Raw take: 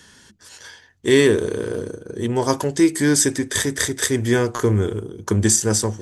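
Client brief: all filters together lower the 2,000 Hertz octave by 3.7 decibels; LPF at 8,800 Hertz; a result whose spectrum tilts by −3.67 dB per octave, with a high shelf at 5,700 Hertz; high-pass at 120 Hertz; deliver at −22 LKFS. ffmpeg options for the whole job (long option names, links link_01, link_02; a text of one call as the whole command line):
ffmpeg -i in.wav -af "highpass=120,lowpass=8800,equalizer=frequency=2000:width_type=o:gain=-5,highshelf=frequency=5700:gain=5.5,volume=-2.5dB" out.wav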